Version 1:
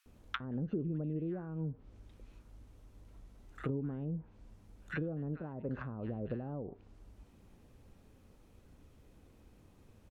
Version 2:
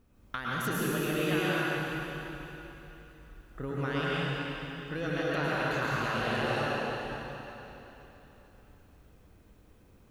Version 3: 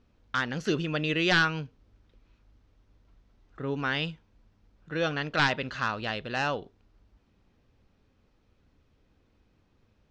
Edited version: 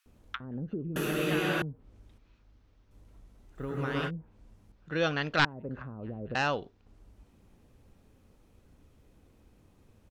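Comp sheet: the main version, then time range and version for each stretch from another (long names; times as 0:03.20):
1
0:00.96–0:01.62: punch in from 2
0:02.18–0:02.91: punch in from 3
0:03.58–0:04.08: punch in from 2, crossfade 0.06 s
0:04.72–0:05.45: punch in from 3
0:06.35–0:06.86: punch in from 3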